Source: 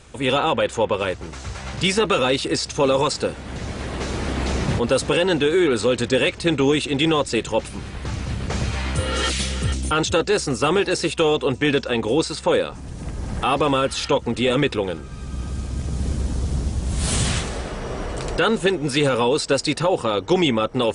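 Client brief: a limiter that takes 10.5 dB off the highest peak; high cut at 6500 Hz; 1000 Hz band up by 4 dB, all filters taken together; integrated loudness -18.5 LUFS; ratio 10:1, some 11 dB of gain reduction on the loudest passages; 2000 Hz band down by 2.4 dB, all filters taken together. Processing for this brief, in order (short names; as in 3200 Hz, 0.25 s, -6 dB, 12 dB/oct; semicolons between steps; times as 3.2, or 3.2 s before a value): LPF 6500 Hz; bell 1000 Hz +6.5 dB; bell 2000 Hz -5.5 dB; compressor 10:1, threshold -24 dBFS; gain +14 dB; limiter -9 dBFS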